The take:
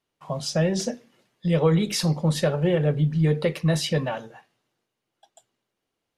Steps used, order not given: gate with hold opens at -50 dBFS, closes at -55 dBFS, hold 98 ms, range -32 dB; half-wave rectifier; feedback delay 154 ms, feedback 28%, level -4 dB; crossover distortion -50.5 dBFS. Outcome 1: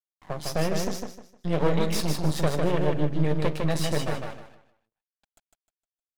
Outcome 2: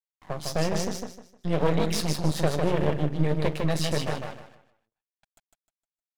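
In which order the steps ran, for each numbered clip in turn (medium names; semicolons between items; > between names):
crossover distortion > gate with hold > half-wave rectifier > feedback delay; gate with hold > crossover distortion > feedback delay > half-wave rectifier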